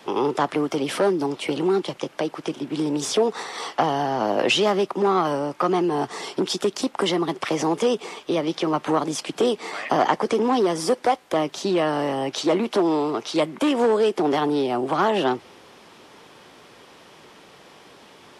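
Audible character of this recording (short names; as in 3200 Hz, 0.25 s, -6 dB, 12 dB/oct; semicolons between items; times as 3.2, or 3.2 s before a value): noise floor -49 dBFS; spectral tilt -3.5 dB/oct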